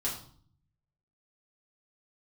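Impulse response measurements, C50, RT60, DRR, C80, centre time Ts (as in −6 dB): 6.5 dB, 0.50 s, −6.5 dB, 10.5 dB, 30 ms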